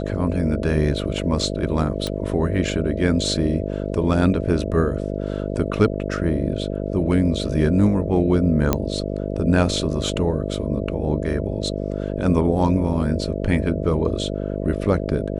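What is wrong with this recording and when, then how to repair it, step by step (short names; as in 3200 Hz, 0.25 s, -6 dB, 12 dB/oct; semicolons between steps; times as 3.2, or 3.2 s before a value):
buzz 50 Hz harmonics 13 -26 dBFS
2.07 pop -13 dBFS
8.73 pop -4 dBFS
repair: de-click; de-hum 50 Hz, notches 13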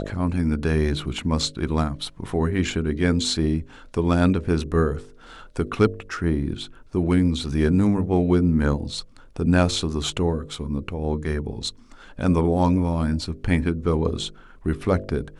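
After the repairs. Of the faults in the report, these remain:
none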